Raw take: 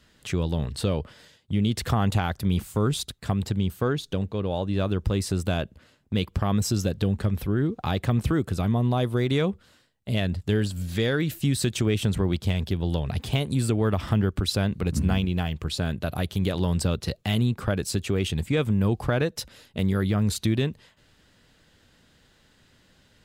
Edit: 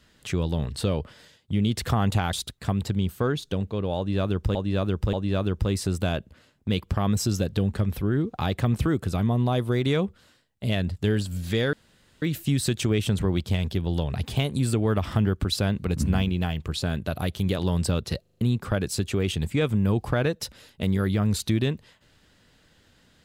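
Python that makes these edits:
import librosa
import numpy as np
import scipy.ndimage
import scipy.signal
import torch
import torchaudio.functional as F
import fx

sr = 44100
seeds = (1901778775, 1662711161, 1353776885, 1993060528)

y = fx.edit(x, sr, fx.cut(start_s=2.33, length_s=0.61),
    fx.repeat(start_s=4.58, length_s=0.58, count=3),
    fx.insert_room_tone(at_s=11.18, length_s=0.49),
    fx.stutter_over(start_s=17.17, slice_s=0.04, count=5), tone=tone)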